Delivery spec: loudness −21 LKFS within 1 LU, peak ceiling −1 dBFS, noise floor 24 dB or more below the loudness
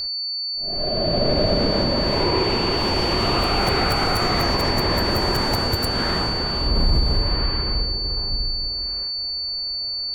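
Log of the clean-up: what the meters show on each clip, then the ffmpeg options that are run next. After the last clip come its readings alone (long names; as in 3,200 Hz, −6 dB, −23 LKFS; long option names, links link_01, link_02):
interfering tone 4,500 Hz; level of the tone −24 dBFS; integrated loudness −21.0 LKFS; sample peak −8.0 dBFS; target loudness −21.0 LKFS
→ -af "bandreject=frequency=4500:width=30"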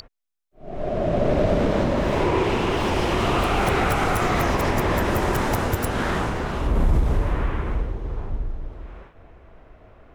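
interfering tone none found; integrated loudness −23.0 LKFS; sample peak −9.5 dBFS; target loudness −21.0 LKFS
→ -af "volume=2dB"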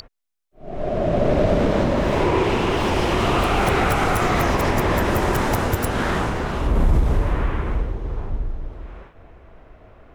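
integrated loudness −21.0 LKFS; sample peak −7.5 dBFS; background noise floor −52 dBFS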